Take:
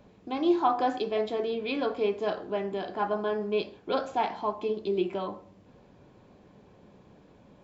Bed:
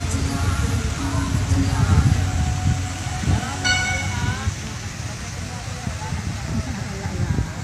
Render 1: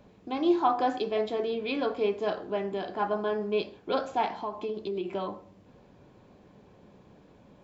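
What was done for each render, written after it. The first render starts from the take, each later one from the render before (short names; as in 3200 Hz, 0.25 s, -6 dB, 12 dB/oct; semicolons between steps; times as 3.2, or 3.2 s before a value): 4.39–5.1 compressor 4:1, threshold -29 dBFS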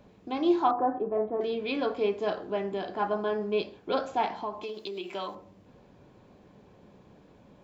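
0.71–1.41 LPF 1300 Hz 24 dB/oct; 4.63–5.35 tilt +3.5 dB/oct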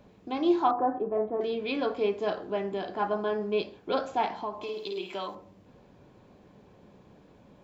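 4.55–5.15 flutter echo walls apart 9.1 m, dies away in 0.56 s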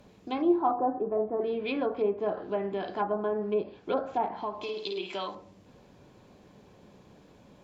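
treble ducked by the level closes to 930 Hz, closed at -24.5 dBFS; high shelf 3800 Hz +9 dB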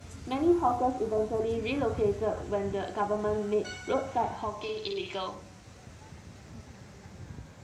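add bed -22.5 dB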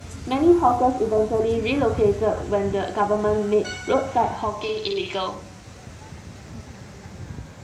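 gain +8.5 dB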